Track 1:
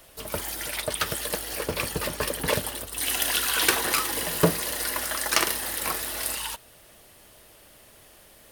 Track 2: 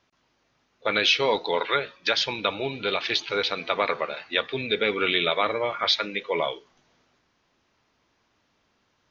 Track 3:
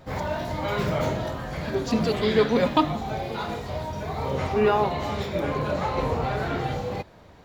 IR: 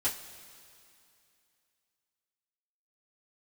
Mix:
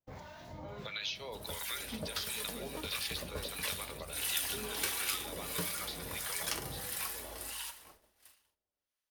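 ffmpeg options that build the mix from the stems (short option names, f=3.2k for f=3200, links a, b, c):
-filter_complex "[0:a]adelay=1150,volume=-11dB,asplit=3[a][b][c];[b]volume=-7.5dB[d];[c]volume=-15.5dB[e];[1:a]aemphasis=mode=production:type=riaa,acompressor=threshold=-33dB:ratio=2,volume=2dB,asplit=2[f][g];[g]volume=-17.5dB[h];[2:a]volume=-13.5dB[i];[f][i]amix=inputs=2:normalize=0,acompressor=threshold=-39dB:ratio=2.5,volume=0dB[j];[3:a]atrim=start_sample=2205[k];[d][k]afir=irnorm=-1:irlink=0[l];[e][h]amix=inputs=2:normalize=0,aecho=0:1:843:1[m];[a][j][l][m]amix=inputs=4:normalize=0,agate=range=-31dB:threshold=-52dB:ratio=16:detection=peak,acrossover=split=270|3000[n][o][p];[o]acompressor=threshold=-46dB:ratio=1.5[q];[n][q][p]amix=inputs=3:normalize=0,acrossover=split=990[r][s];[r]aeval=exprs='val(0)*(1-0.7/2+0.7/2*cos(2*PI*1.5*n/s))':c=same[t];[s]aeval=exprs='val(0)*(1-0.7/2-0.7/2*cos(2*PI*1.5*n/s))':c=same[u];[t][u]amix=inputs=2:normalize=0"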